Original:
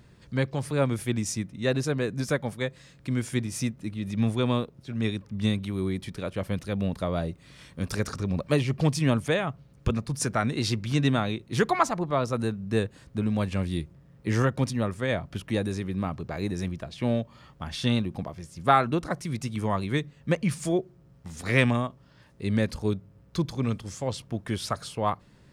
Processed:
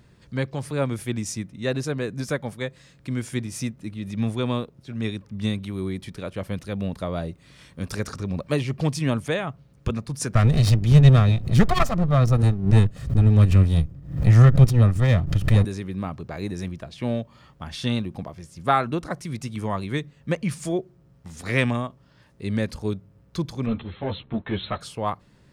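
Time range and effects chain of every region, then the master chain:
0:10.35–0:15.65: lower of the sound and its delayed copy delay 1.6 ms + bass and treble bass +15 dB, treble 0 dB + background raised ahead of every attack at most 120 dB per second
0:23.66–0:24.81: leveller curve on the samples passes 2 + linear-phase brick-wall low-pass 4,200 Hz + string-ensemble chorus
whole clip: no processing

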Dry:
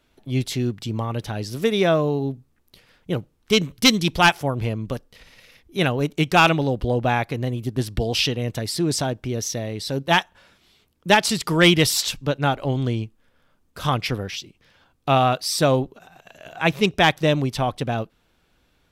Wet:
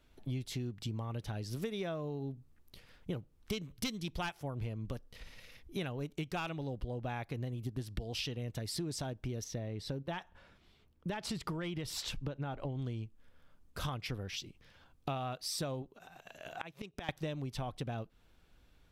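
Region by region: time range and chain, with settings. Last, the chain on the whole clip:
0:09.44–0:12.79: high-shelf EQ 3,600 Hz −11.5 dB + downward compressor, threshold −20 dBFS
0:15.82–0:17.09: low-shelf EQ 120 Hz −10.5 dB + gate with flip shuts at −16 dBFS, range −24 dB
whole clip: low-shelf EQ 90 Hz +10.5 dB; downward compressor 10 to 1, threshold −29 dBFS; level −6 dB

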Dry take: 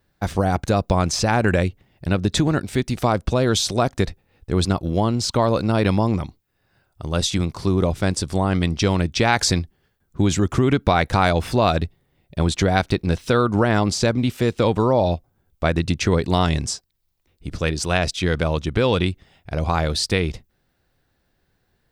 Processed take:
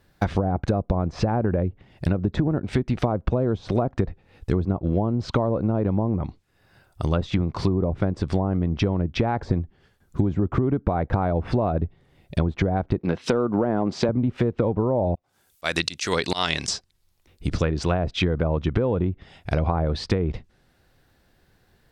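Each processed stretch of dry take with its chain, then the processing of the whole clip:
0:12.99–0:14.09: high-pass filter 180 Hz + hard clipping −10 dBFS
0:15.15–0:16.68: spectral tilt +4.5 dB per octave + volume swells 203 ms
whole clip: treble cut that deepens with the level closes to 780 Hz, closed at −15.5 dBFS; downward compressor 6 to 1, threshold −25 dBFS; level +6.5 dB

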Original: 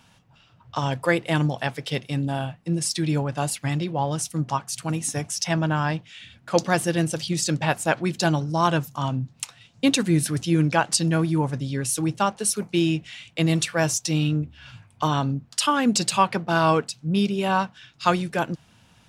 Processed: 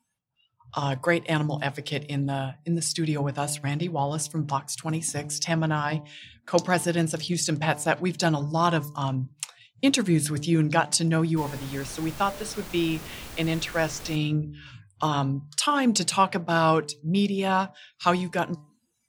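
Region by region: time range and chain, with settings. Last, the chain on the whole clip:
0:11.36–0:14.15: low-pass filter 4,300 Hz + low-shelf EQ 200 Hz −8.5 dB + background noise pink −39 dBFS
whole clip: hum removal 147.9 Hz, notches 7; noise reduction from a noise print of the clip's start 26 dB; level −1.5 dB

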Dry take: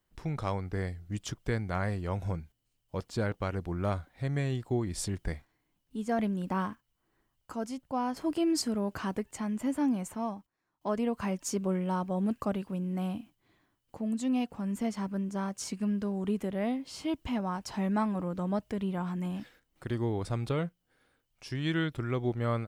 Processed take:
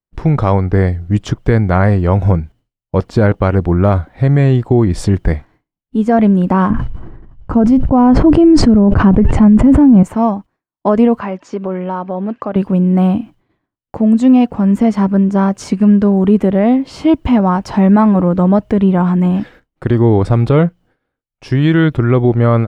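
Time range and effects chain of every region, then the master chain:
0:06.70–0:10.03: linear-phase brick-wall low-pass 11,000 Hz + RIAA equalisation playback + level that may fall only so fast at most 48 dB per second
0:11.19–0:12.56: high-pass filter 580 Hz 6 dB per octave + downward compressor 2 to 1, threshold −39 dBFS + high-frequency loss of the air 150 metres
whole clip: low-pass filter 1,100 Hz 6 dB per octave; downward expander −58 dBFS; boost into a limiter +23 dB; level −1 dB

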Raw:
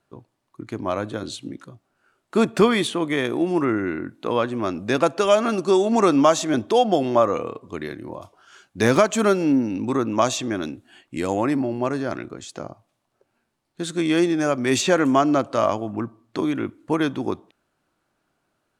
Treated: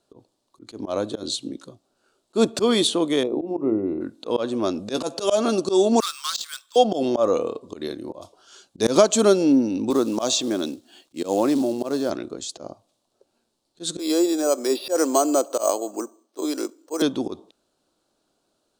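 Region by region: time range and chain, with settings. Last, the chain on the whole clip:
0:03.23–0:04.01: moving average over 28 samples + mains-hum notches 60/120/180/240/300/360/420 Hz
0:04.94–0:05.38: high-shelf EQ 7,800 Hz +7.5 dB + double-tracking delay 13 ms −10.5 dB
0:06.00–0:06.76: Butterworth high-pass 1,200 Hz 48 dB per octave + bad sample-rate conversion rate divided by 4×, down none, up hold + saturating transformer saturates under 2,800 Hz
0:09.90–0:12.10: band-pass filter 140–7,600 Hz + log-companded quantiser 6 bits
0:13.99–0:17.02: de-essing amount 80% + high-pass filter 330 Hz 24 dB per octave + bad sample-rate conversion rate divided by 6×, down filtered, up hold
whole clip: octave-band graphic EQ 125/250/500/2,000/4,000/8,000 Hz −6/+3/+6/−10/+10/+7 dB; volume swells 105 ms; level −1.5 dB

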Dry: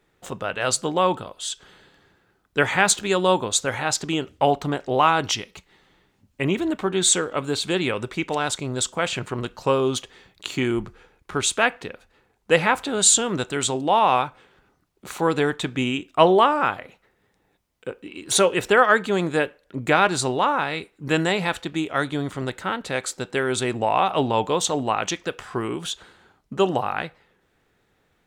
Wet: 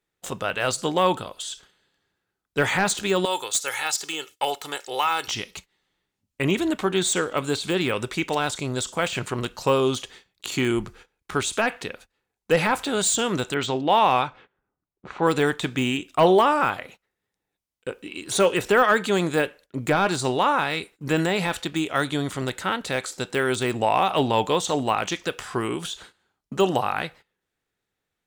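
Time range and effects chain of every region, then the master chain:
0:03.25–0:05.28: high-pass filter 1,500 Hz 6 dB per octave + high-shelf EQ 7,600 Hz +10.5 dB + comb filter 2.3 ms, depth 48%
0:13.54–0:15.27: low-pass that shuts in the quiet parts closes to 1,200 Hz, open at −14.5 dBFS + low-pass filter 6,700 Hz
whole clip: de-essing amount 85%; noise gate −47 dBFS, range −18 dB; parametric band 12,000 Hz +9.5 dB 2.9 octaves

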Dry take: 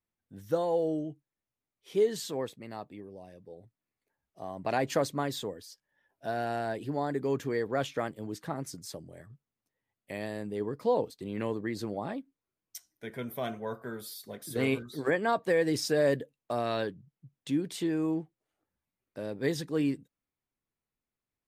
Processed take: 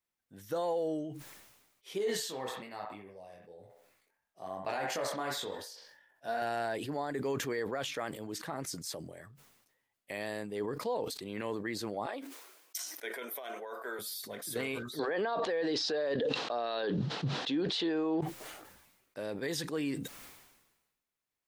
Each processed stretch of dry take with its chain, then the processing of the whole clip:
0:01.98–0:06.42: chorus effect 1.1 Hz, delay 20 ms, depth 4 ms + delay with a band-pass on its return 65 ms, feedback 37%, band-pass 1,300 Hz, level −3 dB
0:12.06–0:13.99: high-pass filter 340 Hz 24 dB per octave + compressor whose output falls as the input rises −40 dBFS
0:14.99–0:18.21: loudspeaker in its box 220–4,600 Hz, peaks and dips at 460 Hz +4 dB, 770 Hz +4 dB, 2,200 Hz −7 dB, 4,000 Hz +5 dB + envelope flattener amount 100%
whole clip: low-shelf EQ 390 Hz −11.5 dB; brickwall limiter −28.5 dBFS; level that may fall only so fast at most 50 dB per second; level +3 dB

